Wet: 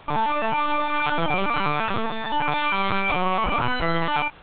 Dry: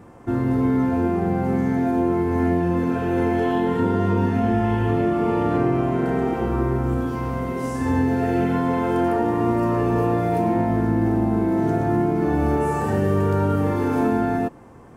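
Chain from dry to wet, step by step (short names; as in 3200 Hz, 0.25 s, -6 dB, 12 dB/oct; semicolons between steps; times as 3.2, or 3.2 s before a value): wide varispeed 3.38×; LPC vocoder at 8 kHz pitch kept; gain -2 dB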